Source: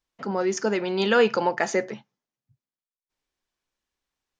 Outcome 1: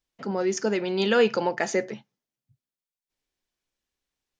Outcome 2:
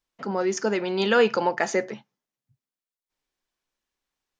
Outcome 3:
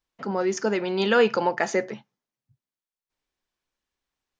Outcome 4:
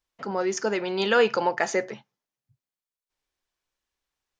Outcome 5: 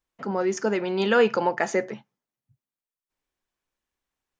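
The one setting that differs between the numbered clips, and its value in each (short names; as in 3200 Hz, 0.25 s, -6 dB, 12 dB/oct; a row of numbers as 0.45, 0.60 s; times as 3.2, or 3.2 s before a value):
bell, frequency: 1100, 76, 15000, 220, 4600 Hz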